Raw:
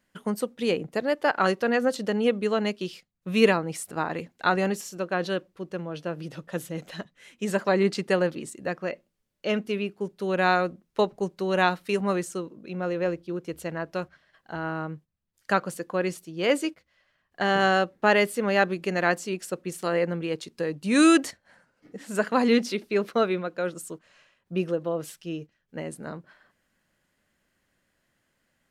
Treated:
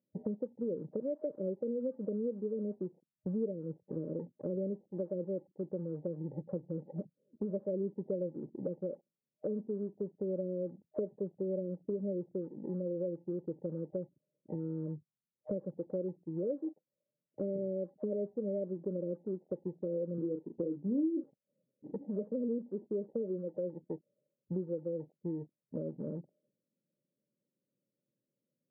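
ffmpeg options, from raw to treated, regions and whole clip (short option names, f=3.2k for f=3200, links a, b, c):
-filter_complex "[0:a]asettb=1/sr,asplit=3[a][b][c];[a]atrim=end=20.184[d];[b]atrim=start=20.18:end=21.24,asetpts=PTS-STARTPTS,afade=t=in:d=0.004:c=qsin,afade=t=out:st=1.056:d=0.004:c=qsin,highpass=91,equalizer=f=300:w=1.7:g=8,asplit=2[e][f];[f]adelay=35,volume=-8dB[g];[e][g]amix=inputs=2:normalize=0,atrim=end_sample=46746[h];[c]atrim=start=21.236[i];[d][h]acrossfade=d=0.004:c1=hsin:c2=qsin[j];[j][i]acrossfade=d=0.004:c1=qsin:c2=hsin,afftfilt=real='re*between(b*sr/4096,110,620)':imag='im*between(b*sr/4096,110,620)':win_size=4096:overlap=0.75,afwtdn=0.00282,acompressor=threshold=-42dB:ratio=4,volume=5.5dB"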